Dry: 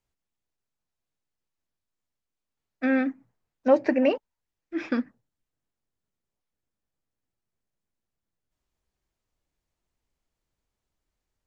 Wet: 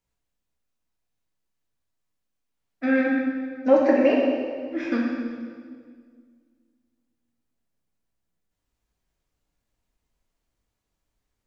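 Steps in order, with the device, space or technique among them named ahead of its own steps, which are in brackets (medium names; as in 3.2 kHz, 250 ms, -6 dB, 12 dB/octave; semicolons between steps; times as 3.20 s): stairwell (reverberation RT60 1.9 s, pre-delay 3 ms, DRR -3.5 dB); trim -1.5 dB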